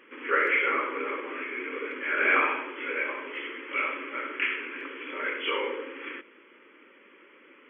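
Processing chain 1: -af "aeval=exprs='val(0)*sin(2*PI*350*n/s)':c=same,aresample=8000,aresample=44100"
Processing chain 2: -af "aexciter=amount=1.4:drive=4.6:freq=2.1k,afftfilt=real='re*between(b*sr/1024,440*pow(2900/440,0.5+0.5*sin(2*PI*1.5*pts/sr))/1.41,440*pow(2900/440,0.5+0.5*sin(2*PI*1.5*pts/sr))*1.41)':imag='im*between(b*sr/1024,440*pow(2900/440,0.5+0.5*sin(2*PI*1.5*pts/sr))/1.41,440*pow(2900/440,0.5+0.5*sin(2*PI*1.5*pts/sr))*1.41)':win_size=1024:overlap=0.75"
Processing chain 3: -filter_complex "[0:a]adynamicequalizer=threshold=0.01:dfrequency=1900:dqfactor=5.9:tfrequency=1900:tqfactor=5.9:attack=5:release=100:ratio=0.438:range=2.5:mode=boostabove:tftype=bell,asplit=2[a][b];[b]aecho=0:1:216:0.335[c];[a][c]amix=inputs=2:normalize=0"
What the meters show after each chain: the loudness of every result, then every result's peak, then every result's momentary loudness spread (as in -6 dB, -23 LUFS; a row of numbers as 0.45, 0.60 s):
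-31.5, -32.5, -27.0 LUFS; -12.5, -13.0, -10.0 dBFS; 14, 14, 13 LU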